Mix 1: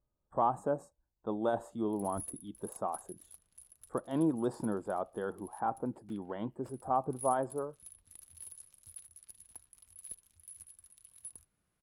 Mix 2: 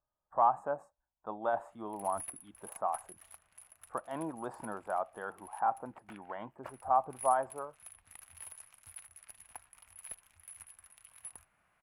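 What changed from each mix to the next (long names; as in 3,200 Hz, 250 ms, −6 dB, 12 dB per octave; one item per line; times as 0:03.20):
speech −11.0 dB
master: add flat-topped bell 1,300 Hz +14.5 dB 2.5 octaves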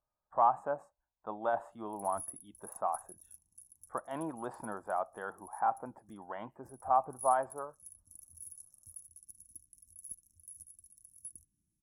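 background: add linear-phase brick-wall band-stop 360–5,300 Hz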